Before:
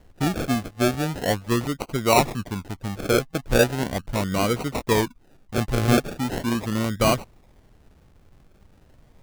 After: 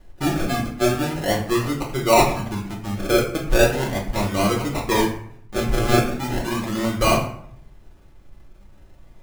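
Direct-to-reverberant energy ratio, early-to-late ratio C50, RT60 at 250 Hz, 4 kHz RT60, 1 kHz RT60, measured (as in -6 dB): -3.0 dB, 7.0 dB, 0.70 s, 0.40 s, 0.65 s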